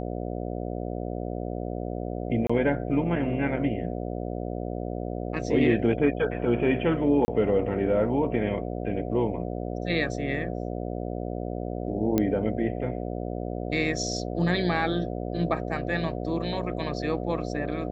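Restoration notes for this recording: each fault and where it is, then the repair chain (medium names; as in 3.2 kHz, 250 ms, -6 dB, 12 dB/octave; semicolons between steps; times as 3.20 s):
buzz 60 Hz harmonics 12 -32 dBFS
2.47–2.50 s: dropout 25 ms
7.25–7.28 s: dropout 30 ms
12.18 s: pop -11 dBFS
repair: de-click; de-hum 60 Hz, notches 12; interpolate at 2.47 s, 25 ms; interpolate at 7.25 s, 30 ms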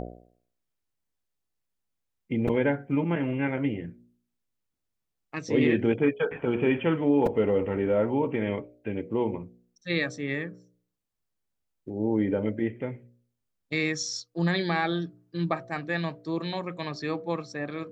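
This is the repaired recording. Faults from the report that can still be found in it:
nothing left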